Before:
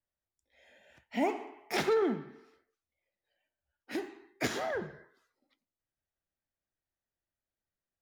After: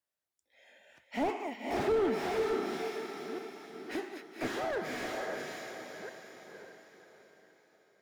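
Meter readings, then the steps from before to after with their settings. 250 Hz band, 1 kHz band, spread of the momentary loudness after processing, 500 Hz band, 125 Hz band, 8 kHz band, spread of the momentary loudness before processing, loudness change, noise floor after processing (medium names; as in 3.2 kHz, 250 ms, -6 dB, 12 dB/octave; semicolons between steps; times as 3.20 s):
+0.5 dB, +2.0 dB, 17 LU, +2.0 dB, -1.0 dB, -2.0 dB, 15 LU, -2.0 dB, under -85 dBFS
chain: chunks repeated in reverse 677 ms, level -10 dB; high-pass 370 Hz 6 dB/octave; on a send: echo that smears into a reverb 547 ms, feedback 43%, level -3 dB; on the sum: slew-rate limiter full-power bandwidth 21 Hz; trim +2 dB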